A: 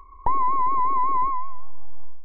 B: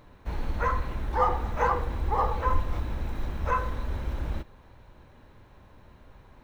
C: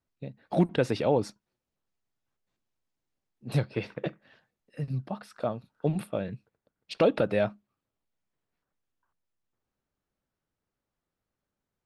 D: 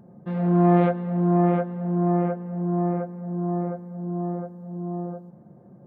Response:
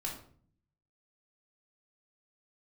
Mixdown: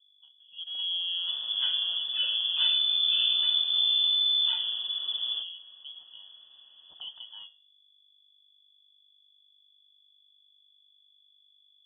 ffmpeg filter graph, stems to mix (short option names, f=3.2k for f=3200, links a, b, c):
-filter_complex "[0:a]adelay=2300,volume=-7dB[a];[1:a]highpass=55,adelay=1000,volume=0.5dB[b];[2:a]flanger=delay=9:depth=6.6:regen=-86:speed=0.66:shape=triangular,aeval=exprs='val(0)+0.00355*(sin(2*PI*50*n/s)+sin(2*PI*2*50*n/s)/2+sin(2*PI*3*50*n/s)/3+sin(2*PI*4*50*n/s)/4+sin(2*PI*5*50*n/s)/5)':c=same,volume=-13.5dB[c];[3:a]alimiter=limit=-16dB:level=0:latency=1:release=290,adelay=400,volume=-9dB[d];[a][b][c][d]amix=inputs=4:normalize=0,asuperstop=centerf=1200:order=4:qfactor=0.63,lowpass=f=3k:t=q:w=0.5098,lowpass=f=3k:t=q:w=0.6013,lowpass=f=3k:t=q:w=0.9,lowpass=f=3k:t=q:w=2.563,afreqshift=-3500"